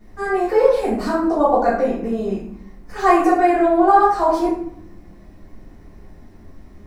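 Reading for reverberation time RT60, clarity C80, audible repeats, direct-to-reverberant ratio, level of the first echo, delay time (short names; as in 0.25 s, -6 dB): 0.70 s, 6.0 dB, none, -12.5 dB, none, none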